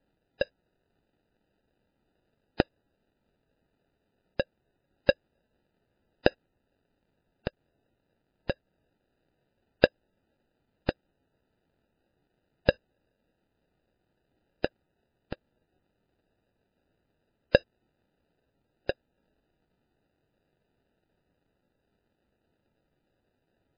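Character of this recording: phasing stages 12, 0.24 Hz, lowest notch 590–1400 Hz; aliases and images of a low sample rate 1.1 kHz, jitter 0%; MP3

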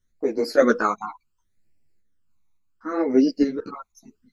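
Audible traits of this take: phasing stages 12, 0.7 Hz, lowest notch 520–1200 Hz; random-step tremolo; a shimmering, thickened sound

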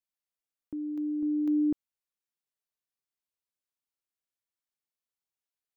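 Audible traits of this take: noise floor -93 dBFS; spectral tilt -8.0 dB/octave

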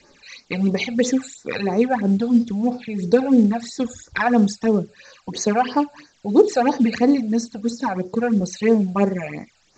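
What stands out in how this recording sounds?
a quantiser's noise floor 10-bit, dither triangular; phasing stages 12, 3 Hz, lowest notch 320–3200 Hz; µ-law

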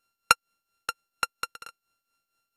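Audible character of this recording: a buzz of ramps at a fixed pitch in blocks of 32 samples; tremolo triangle 4.3 Hz, depth 80%; MP2

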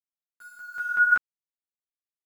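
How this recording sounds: a quantiser's noise floor 8-bit, dither none; tremolo saw down 2.7 Hz, depth 50%; a shimmering, thickened sound

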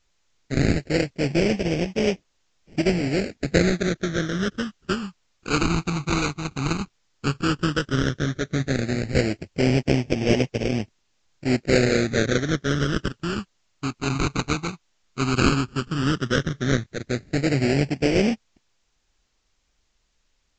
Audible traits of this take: aliases and images of a low sample rate 1 kHz, jitter 20%; phasing stages 12, 0.12 Hz, lowest notch 560–1300 Hz; a quantiser's noise floor 12-bit, dither triangular; Vorbis

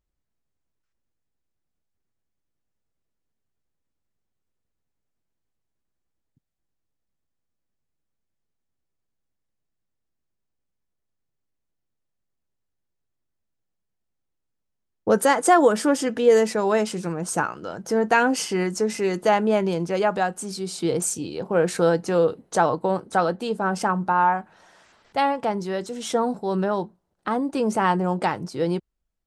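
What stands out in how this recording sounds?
noise floor -79 dBFS; spectral tilt -4.5 dB/octave

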